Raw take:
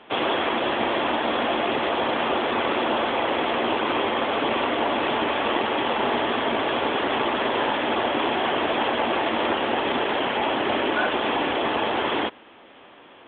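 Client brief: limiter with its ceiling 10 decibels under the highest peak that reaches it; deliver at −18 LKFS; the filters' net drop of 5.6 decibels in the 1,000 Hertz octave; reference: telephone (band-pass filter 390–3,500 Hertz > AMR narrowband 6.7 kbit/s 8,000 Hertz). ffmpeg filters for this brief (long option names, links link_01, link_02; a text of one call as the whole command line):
ffmpeg -i in.wav -af "equalizer=frequency=1000:width_type=o:gain=-7,alimiter=limit=-21dB:level=0:latency=1,highpass=390,lowpass=3500,volume=17dB" -ar 8000 -c:a libopencore_amrnb -b:a 6700 out.amr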